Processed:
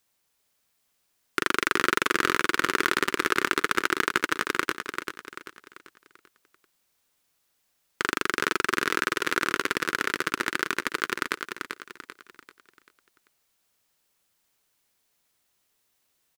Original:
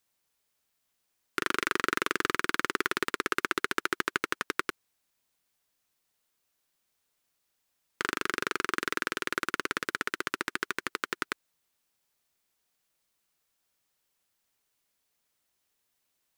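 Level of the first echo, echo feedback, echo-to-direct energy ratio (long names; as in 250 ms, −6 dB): −6.5 dB, 40%, −5.5 dB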